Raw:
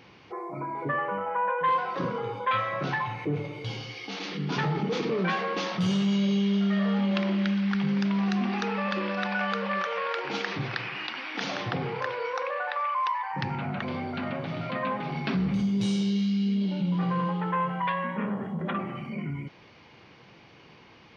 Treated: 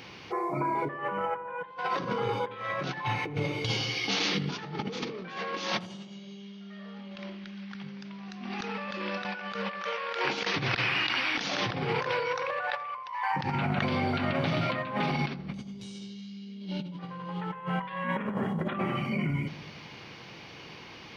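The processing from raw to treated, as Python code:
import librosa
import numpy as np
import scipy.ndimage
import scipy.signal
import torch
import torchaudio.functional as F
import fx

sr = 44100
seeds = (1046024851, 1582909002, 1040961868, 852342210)

y = fx.high_shelf(x, sr, hz=2800.0, db=8.5)
y = fx.over_compress(y, sr, threshold_db=-32.0, ratio=-0.5)
y = fx.echo_filtered(y, sr, ms=83, feedback_pct=76, hz=970.0, wet_db=-14)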